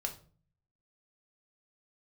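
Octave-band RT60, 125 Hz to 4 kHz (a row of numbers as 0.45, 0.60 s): 0.85, 0.75, 0.45, 0.35, 0.30, 0.30 s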